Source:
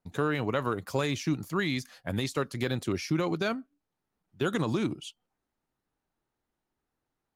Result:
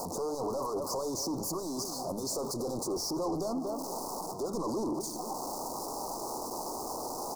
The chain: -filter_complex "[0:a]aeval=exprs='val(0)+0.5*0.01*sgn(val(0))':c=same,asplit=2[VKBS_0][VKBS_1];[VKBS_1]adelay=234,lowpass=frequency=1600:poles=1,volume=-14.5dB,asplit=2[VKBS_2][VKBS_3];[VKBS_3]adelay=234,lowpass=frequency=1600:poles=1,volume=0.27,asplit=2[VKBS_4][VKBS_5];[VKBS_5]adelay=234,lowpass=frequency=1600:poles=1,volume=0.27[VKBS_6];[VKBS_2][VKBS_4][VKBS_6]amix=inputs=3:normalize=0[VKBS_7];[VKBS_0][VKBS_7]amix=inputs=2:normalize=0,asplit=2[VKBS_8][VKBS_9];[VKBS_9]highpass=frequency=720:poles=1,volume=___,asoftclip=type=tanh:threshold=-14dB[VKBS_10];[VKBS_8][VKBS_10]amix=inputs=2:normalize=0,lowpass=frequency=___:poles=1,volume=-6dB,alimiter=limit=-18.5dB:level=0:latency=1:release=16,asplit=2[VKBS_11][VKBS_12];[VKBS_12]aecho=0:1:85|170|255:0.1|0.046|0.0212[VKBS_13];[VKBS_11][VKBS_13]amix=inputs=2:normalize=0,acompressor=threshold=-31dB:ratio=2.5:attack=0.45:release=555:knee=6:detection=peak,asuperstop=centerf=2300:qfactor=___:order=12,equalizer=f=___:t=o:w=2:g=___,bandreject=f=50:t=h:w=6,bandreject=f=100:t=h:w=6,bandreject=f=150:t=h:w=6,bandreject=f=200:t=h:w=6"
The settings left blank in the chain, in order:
31dB, 4200, 0.61, 110, -6.5